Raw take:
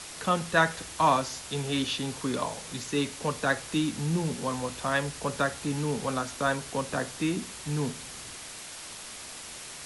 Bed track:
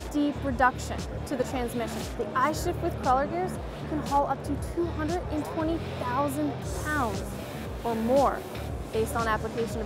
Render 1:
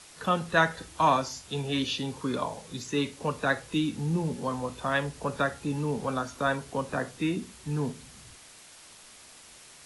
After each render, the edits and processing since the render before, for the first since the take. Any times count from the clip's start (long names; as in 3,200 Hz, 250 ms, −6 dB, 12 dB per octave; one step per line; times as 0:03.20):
noise reduction from a noise print 9 dB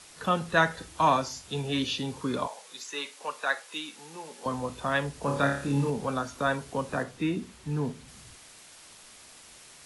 0:02.47–0:04.46: high-pass filter 740 Hz
0:05.20–0:05.90: flutter between parallel walls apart 4.9 metres, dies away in 0.51 s
0:07.03–0:08.08: high-shelf EQ 4,900 Hz −6.5 dB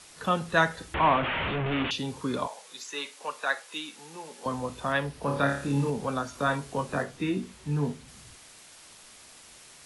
0:00.94–0:01.91: linear delta modulator 16 kbit/s, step −22.5 dBFS
0:04.92–0:05.49: parametric band 7,200 Hz −7.5 dB 0.56 octaves
0:06.31–0:07.97: double-tracking delay 21 ms −6 dB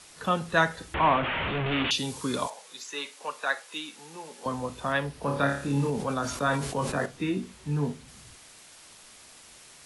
0:01.55–0:02.50: high-shelf EQ 3,600 Hz +11 dB
0:05.77–0:07.06: level that may fall only so fast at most 54 dB per second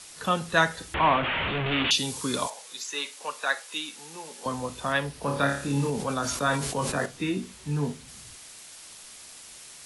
high-shelf EQ 3,000 Hz +7 dB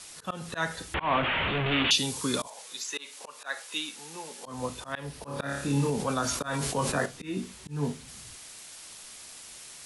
volume swells 184 ms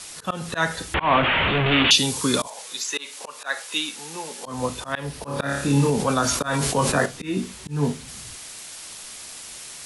level +7.5 dB